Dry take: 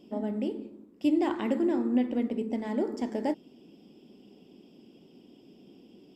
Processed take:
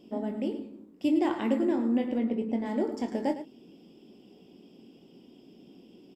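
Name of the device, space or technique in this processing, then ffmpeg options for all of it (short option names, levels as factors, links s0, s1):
slapback doubling: -filter_complex "[0:a]asettb=1/sr,asplit=3[s0][s1][s2];[s0]atrim=end=2.184[s3];[s1]atrim=start=2.18:end=2.66,asetpts=PTS-STARTPTS,afade=t=in:d=0.004:c=qsin,afade=t=out:st=0.476:d=0.004:c=qsin,aemphasis=mode=reproduction:type=50fm[s4];[s2]atrim=start=2.656[s5];[s3][s4]acrossfade=d=0.004:c1=hsin:c2=qsin[s6];[s6][s5]acrossfade=d=0.004:c1=qsin:c2=hsin,asplit=3[s7][s8][s9];[s8]adelay=22,volume=0.398[s10];[s9]adelay=108,volume=0.251[s11];[s7][s10][s11]amix=inputs=3:normalize=0"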